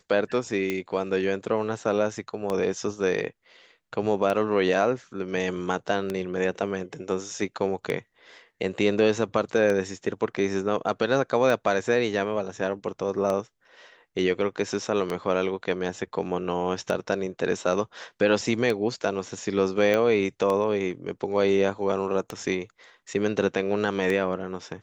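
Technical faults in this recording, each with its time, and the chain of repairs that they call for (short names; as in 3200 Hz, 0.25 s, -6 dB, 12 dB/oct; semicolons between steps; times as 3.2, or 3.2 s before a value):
tick 33 1/3 rpm -14 dBFS
19.94 pop -12 dBFS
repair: de-click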